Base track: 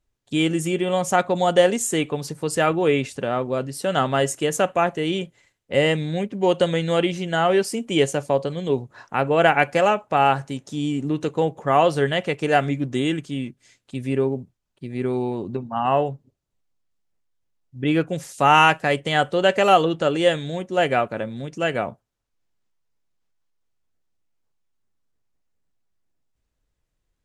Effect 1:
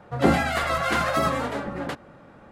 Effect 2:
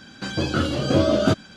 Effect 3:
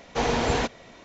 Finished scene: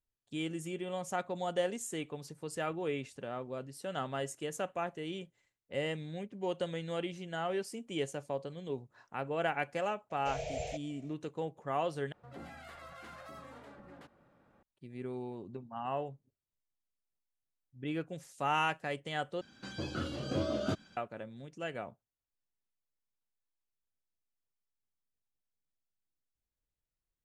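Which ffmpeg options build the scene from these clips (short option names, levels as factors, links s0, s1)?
-filter_complex "[0:a]volume=0.15[s0];[3:a]firequalizer=gain_entry='entry(170,0);entry(240,-30);entry(420,-6);entry(630,13);entry(1000,-25);entry(1600,-16);entry(2300,3);entry(4000,-5);entry(9600,12)':delay=0.05:min_phase=1[s1];[1:a]acompressor=threshold=0.0251:ratio=2:attack=0.14:release=133:knee=1:detection=peak[s2];[s0]asplit=3[s3][s4][s5];[s3]atrim=end=12.124[s6];[s2]atrim=end=2.51,asetpts=PTS-STARTPTS,volume=0.126[s7];[s4]atrim=start=14.626:end=19.414[s8];[2:a]atrim=end=1.56,asetpts=PTS-STARTPTS,volume=0.178[s9];[s5]atrim=start=20.966[s10];[s1]atrim=end=1.04,asetpts=PTS-STARTPTS,volume=0.158,afade=t=in:d=0.004:c=hsin,afade=t=out:st=1.036:d=0.004:c=hsin,adelay=445410S[s11];[s6][s7]acrossfade=d=0.004:c1=hsin:c2=hsin[s12];[s12][s8]acrossfade=d=0.004:c1=hsin:c2=hsin[s13];[s13][s9]acrossfade=d=0.004:c1=hsin:c2=hsin[s14];[s14][s10]acrossfade=d=0.004:c1=hsin:c2=hsin[s15];[s15][s11]amix=inputs=2:normalize=0"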